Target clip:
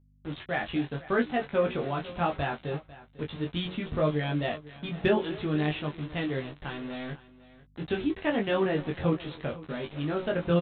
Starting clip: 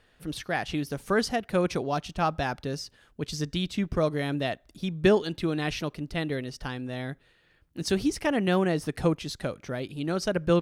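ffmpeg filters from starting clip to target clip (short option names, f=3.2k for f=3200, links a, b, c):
-filter_complex "[0:a]bandreject=f=184.9:t=h:w=4,bandreject=f=369.8:t=h:w=4,bandreject=f=554.7:t=h:w=4,bandreject=f=739.6:t=h:w=4,bandreject=f=924.5:t=h:w=4,bandreject=f=1.1094k:t=h:w=4,bandreject=f=1.2943k:t=h:w=4,bandreject=f=1.4792k:t=h:w=4,bandreject=f=1.6641k:t=h:w=4,asplit=2[a][b];[b]adelay=250,highpass=300,lowpass=3.4k,asoftclip=type=hard:threshold=-18.5dB,volume=-17dB[c];[a][c]amix=inputs=2:normalize=0,aresample=8000,aeval=exprs='val(0)*gte(abs(val(0)),0.0126)':c=same,aresample=44100,flanger=delay=20:depth=2.8:speed=0.71,aeval=exprs='val(0)+0.000891*(sin(2*PI*50*n/s)+sin(2*PI*2*50*n/s)/2+sin(2*PI*3*50*n/s)/3+sin(2*PI*4*50*n/s)/4+sin(2*PI*5*50*n/s)/5)':c=same,asplit=2[d][e];[e]adelay=13,volume=-6.5dB[f];[d][f]amix=inputs=2:normalize=0,asplit=2[g][h];[h]aecho=0:1:499:0.119[i];[g][i]amix=inputs=2:normalize=0,acontrast=74,volume=-6dB"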